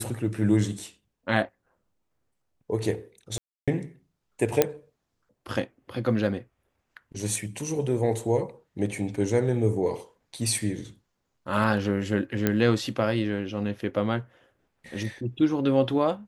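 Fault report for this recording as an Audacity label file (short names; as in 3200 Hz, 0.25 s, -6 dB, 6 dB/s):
3.380000	3.680000	gap 0.296 s
4.620000	4.620000	pop -5 dBFS
12.470000	12.470000	pop -9 dBFS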